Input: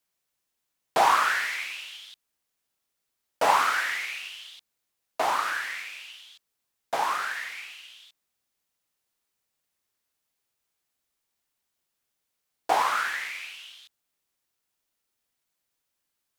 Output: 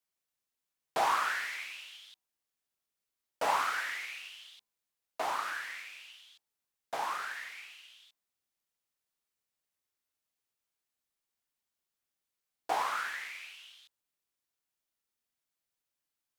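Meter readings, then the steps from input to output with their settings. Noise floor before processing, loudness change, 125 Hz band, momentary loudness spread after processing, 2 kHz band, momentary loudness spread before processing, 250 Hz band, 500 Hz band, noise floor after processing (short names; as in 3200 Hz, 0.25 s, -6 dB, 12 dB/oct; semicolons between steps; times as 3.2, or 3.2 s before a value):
-81 dBFS, -8.0 dB, n/a, 21 LU, -8.0 dB, 20 LU, -8.5 dB, -8.5 dB, under -85 dBFS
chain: de-hum 68.2 Hz, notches 15; gain -8 dB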